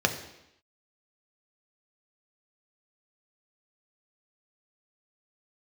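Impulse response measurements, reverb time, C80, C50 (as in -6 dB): 0.85 s, 12.0 dB, 10.0 dB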